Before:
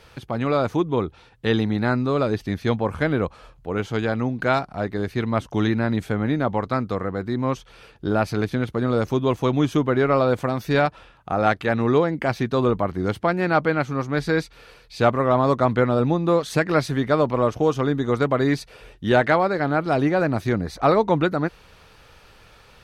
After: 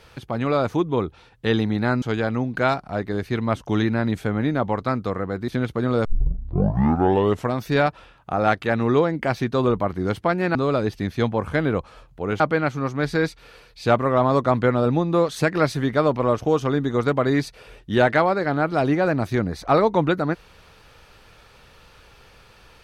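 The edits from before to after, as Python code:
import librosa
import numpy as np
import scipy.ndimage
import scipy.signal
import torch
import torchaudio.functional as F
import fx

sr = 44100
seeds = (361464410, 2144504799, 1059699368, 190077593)

y = fx.edit(x, sr, fx.move(start_s=2.02, length_s=1.85, to_s=13.54),
    fx.cut(start_s=7.33, length_s=1.14),
    fx.tape_start(start_s=9.04, length_s=1.51), tone=tone)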